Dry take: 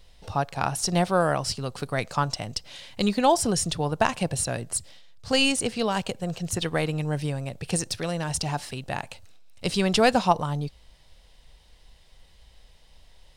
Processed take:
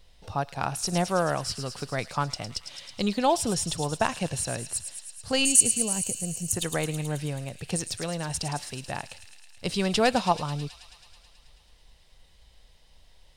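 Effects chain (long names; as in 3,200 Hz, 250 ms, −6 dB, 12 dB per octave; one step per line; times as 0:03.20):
0:05.45–0:06.52: drawn EQ curve 240 Hz 0 dB, 1,300 Hz −14 dB, 2,500 Hz −7 dB, 3,800 Hz −17 dB, 6,700 Hz +15 dB
on a send: delay with a high-pass on its return 108 ms, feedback 77%, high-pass 3,200 Hz, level −8 dB
on the sum: level −3 dB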